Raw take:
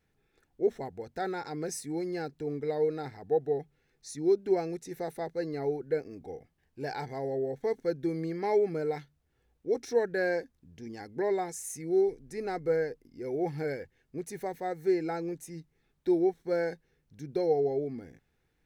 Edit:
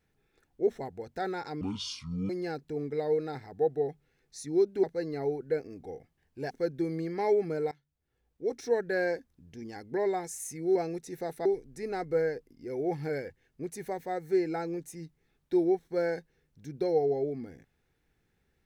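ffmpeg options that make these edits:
-filter_complex "[0:a]asplit=8[a][b][c][d][e][f][g][h];[a]atrim=end=1.614[i];[b]atrim=start=1.61:end=2,asetpts=PTS-STARTPTS,asetrate=25137,aresample=44100[j];[c]atrim=start=1.996:end=4.542[k];[d]atrim=start=5.238:end=6.912[l];[e]atrim=start=7.748:end=8.96,asetpts=PTS-STARTPTS,afade=t=out:st=1.208:d=0.004:c=hsin:silence=0.0794328[m];[f]atrim=start=8.96:end=12.002,asetpts=PTS-STARTPTS,afade=t=in:d=1.44:c=qsin:silence=0.0794328[n];[g]atrim=start=4.538:end=5.242[o];[h]atrim=start=11.998[p];[i][j]acrossfade=d=0.004:c1=hsin:c2=hsin[q];[q][k]acrossfade=d=0.004:c1=hsin:c2=hsin[r];[r][l]acrossfade=d=0.004:c1=hsin:c2=hsin[s];[m][n]concat=n=2:v=0:a=1[t];[s][t]acrossfade=d=0.004:c1=hsin:c2=hsin[u];[u][o]acrossfade=d=0.004:c1=hsin:c2=hsin[v];[v][p]acrossfade=d=0.004:c1=hsin:c2=hsin"

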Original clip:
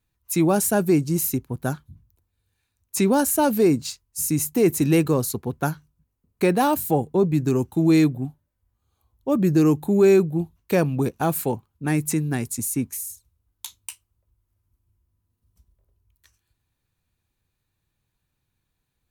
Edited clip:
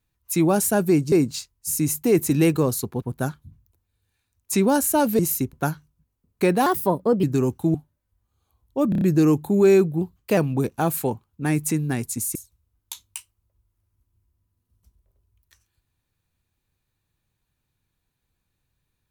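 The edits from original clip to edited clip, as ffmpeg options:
-filter_complex "[0:a]asplit=15[a][b][c][d][e][f][g][h][i][j][k][l][m][n][o];[a]atrim=end=1.122[p];[b]atrim=start=3.628:end=5.532[q];[c]atrim=start=1.458:end=3.632[r];[d]atrim=start=1.118:end=1.462[s];[e]atrim=start=5.528:end=6.664[t];[f]atrim=start=6.66:end=7.36,asetpts=PTS-STARTPTS,asetrate=53802,aresample=44100,atrim=end_sample=25303,asetpts=PTS-STARTPTS[u];[g]atrim=start=7.356:end=7.872[v];[h]atrim=start=8.248:end=9.432[w];[i]atrim=start=9.398:end=9.432[x];[j]atrim=start=9.398:end=9.432[y];[k]atrim=start=9.398:end=9.432[z];[l]atrim=start=9.398:end=10.404[aa];[m]atrim=start=10.4:end=10.79,asetpts=PTS-STARTPTS,asetrate=48069,aresample=44100[ab];[n]atrim=start=10.786:end=12.772[ac];[o]atrim=start=13.078[ad];[p][q]acrossfade=d=0.004:c1=hsin:c2=hsin[ae];[ae][r]acrossfade=d=0.004:c1=hsin:c2=hsin[af];[af][s]acrossfade=d=0.004:c1=hsin:c2=hsin[ag];[ag][t]acrossfade=d=0.004:c1=hsin:c2=hsin[ah];[ah][u]acrossfade=d=0.004:c1=hsin:c2=hsin[ai];[ai][v]acrossfade=d=0.004:c1=hsin:c2=hsin[aj];[aj][w]acrossfade=d=0.004:c1=hsin:c2=hsin[ak];[ak][x]acrossfade=d=0.004:c1=hsin:c2=hsin[al];[al][y]acrossfade=d=0.004:c1=hsin:c2=hsin[am];[am][z]acrossfade=d=0.004:c1=hsin:c2=hsin[an];[an][aa]acrossfade=d=0.004:c1=hsin:c2=hsin[ao];[ao][ab]acrossfade=d=0.004:c1=hsin:c2=hsin[ap];[ap][ac]acrossfade=d=0.004:c1=hsin:c2=hsin[aq];[aq][ad]acrossfade=d=0.004:c1=hsin:c2=hsin"

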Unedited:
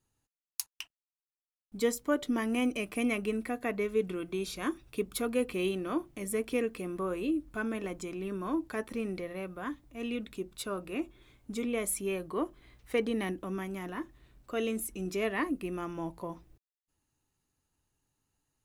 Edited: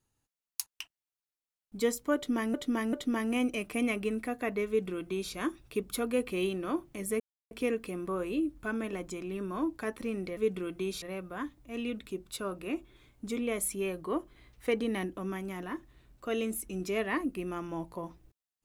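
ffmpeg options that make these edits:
-filter_complex "[0:a]asplit=6[a][b][c][d][e][f];[a]atrim=end=2.542[g];[b]atrim=start=2.148:end=2.542[h];[c]atrim=start=2.148:end=6.42,asetpts=PTS-STARTPTS,afade=t=out:st=4.268:d=0.004:c=hsin,apad=pad_dur=0.31[i];[d]atrim=start=6.42:end=9.282,asetpts=PTS-STARTPTS,afade=t=in:d=0.004:c=hsin[j];[e]atrim=start=3.898:end=4.552[k];[f]atrim=start=9.278[l];[g][h]acrossfade=d=0.004:c1=hsin:c2=hsin[m];[i][j]concat=n=2:v=0:a=1[n];[m][n]acrossfade=d=0.004:c1=hsin:c2=hsin[o];[o][k]acrossfade=d=0.004:c1=hsin:c2=hsin[p];[p][l]acrossfade=d=0.004:c1=hsin:c2=hsin"

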